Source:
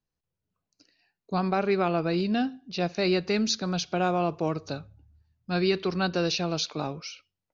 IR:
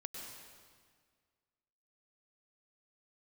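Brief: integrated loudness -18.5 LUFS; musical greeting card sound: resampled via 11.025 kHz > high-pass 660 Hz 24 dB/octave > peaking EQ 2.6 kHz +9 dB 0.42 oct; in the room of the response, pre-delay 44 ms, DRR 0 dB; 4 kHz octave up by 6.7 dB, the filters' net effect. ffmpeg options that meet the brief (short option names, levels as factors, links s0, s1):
-filter_complex "[0:a]equalizer=f=4000:t=o:g=6,asplit=2[s0][s1];[1:a]atrim=start_sample=2205,adelay=44[s2];[s1][s2]afir=irnorm=-1:irlink=0,volume=1.26[s3];[s0][s3]amix=inputs=2:normalize=0,aresample=11025,aresample=44100,highpass=f=660:w=0.5412,highpass=f=660:w=1.3066,equalizer=f=2600:t=o:w=0.42:g=9,volume=2"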